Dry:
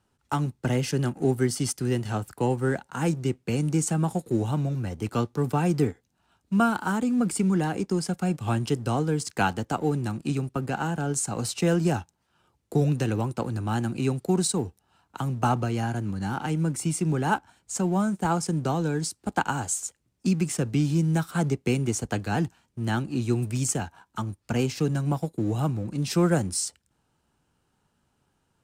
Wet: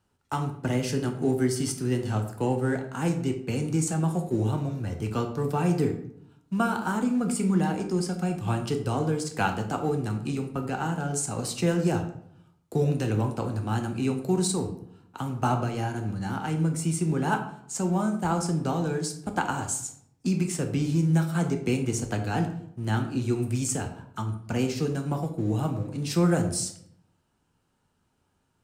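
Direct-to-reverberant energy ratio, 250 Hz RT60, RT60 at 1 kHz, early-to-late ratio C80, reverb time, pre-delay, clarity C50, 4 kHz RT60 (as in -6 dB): 4.5 dB, 0.90 s, 0.65 s, 12.5 dB, 0.70 s, 7 ms, 9.0 dB, 0.45 s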